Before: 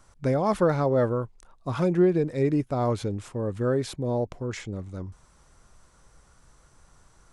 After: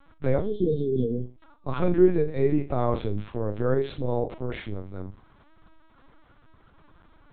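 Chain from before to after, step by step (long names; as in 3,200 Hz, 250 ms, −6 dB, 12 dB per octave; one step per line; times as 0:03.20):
healed spectral selection 0:00.41–0:01.25, 480–3,000 Hz after
on a send: flutter between parallel walls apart 6.7 metres, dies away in 0.28 s
on the sum: linear-prediction vocoder at 8 kHz pitch kept
level +1 dB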